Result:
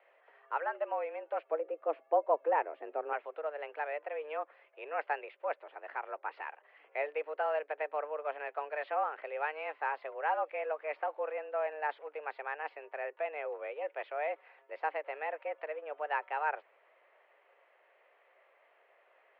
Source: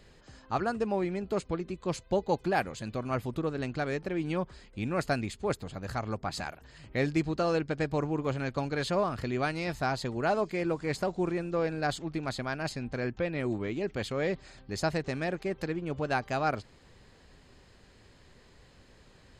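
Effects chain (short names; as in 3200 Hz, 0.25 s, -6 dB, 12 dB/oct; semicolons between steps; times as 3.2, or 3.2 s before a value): 1.51–3.13 tilt -4.5 dB/oct; mistuned SSB +150 Hz 340–2500 Hz; gain -3.5 dB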